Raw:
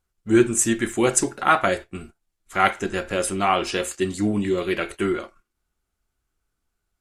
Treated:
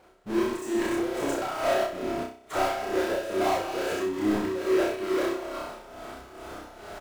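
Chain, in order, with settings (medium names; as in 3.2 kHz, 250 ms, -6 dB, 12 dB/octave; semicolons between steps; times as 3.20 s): chunks repeated in reverse 124 ms, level -8 dB; expander -45 dBFS; reverse; upward compressor, threshold -33 dBFS; reverse; peak limiter -10.5 dBFS, peak gain reduction 7.5 dB; compression, threshold -27 dBFS, peak gain reduction 11.5 dB; band-pass filter 600 Hz, Q 1.7; power-law waveshaper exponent 0.35; doubling 29 ms -5 dB; on a send: flutter echo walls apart 5.5 m, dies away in 0.65 s; on the sum: tremolo 2.3 Hz, depth 63%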